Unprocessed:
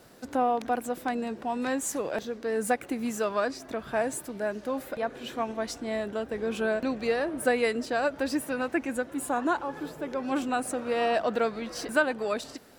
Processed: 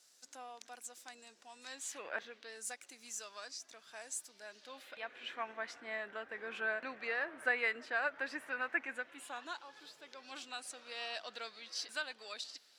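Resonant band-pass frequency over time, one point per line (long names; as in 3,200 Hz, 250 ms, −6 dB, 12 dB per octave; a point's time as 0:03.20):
resonant band-pass, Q 1.8
0:01.65 6,500 Hz
0:02.16 1,600 Hz
0:02.63 6,100 Hz
0:04.23 6,100 Hz
0:05.45 1,800 Hz
0:08.87 1,800 Hz
0:09.54 4,400 Hz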